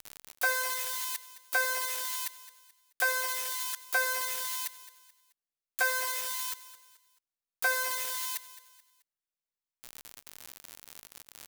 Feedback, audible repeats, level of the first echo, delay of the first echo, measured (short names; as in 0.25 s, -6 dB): 38%, 3, -16.0 dB, 0.216 s